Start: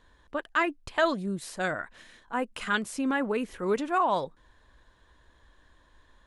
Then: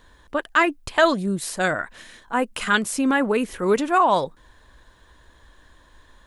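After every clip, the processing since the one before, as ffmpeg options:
-af "highshelf=f=8.3k:g=8.5,volume=7.5dB"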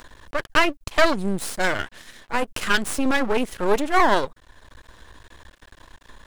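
-af "aeval=exprs='max(val(0),0)':c=same,acompressor=mode=upward:threshold=-41dB:ratio=2.5,volume=4dB"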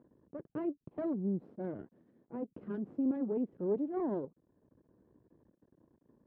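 -af "asuperpass=centerf=240:order=4:qfactor=0.88,volume=-7.5dB"

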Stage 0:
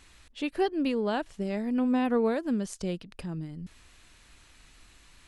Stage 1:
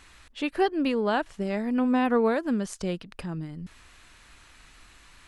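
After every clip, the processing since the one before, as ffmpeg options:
-af "equalizer=f=1.3k:t=o:w=1.8:g=5.5,volume=1.5dB"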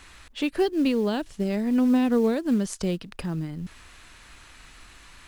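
-filter_complex "[0:a]acrossover=split=460|3000[a][b][c];[b]acompressor=threshold=-43dB:ratio=3[d];[a][d][c]amix=inputs=3:normalize=0,asplit=2[e][f];[f]acrusher=bits=5:mode=log:mix=0:aa=0.000001,volume=-4dB[g];[e][g]amix=inputs=2:normalize=0"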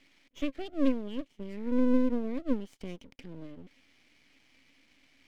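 -filter_complex "[0:a]asplit=3[a][b][c];[a]bandpass=f=270:t=q:w=8,volume=0dB[d];[b]bandpass=f=2.29k:t=q:w=8,volume=-6dB[e];[c]bandpass=f=3.01k:t=q:w=8,volume=-9dB[f];[d][e][f]amix=inputs=3:normalize=0,aeval=exprs='max(val(0),0)':c=same,volume=3.5dB"

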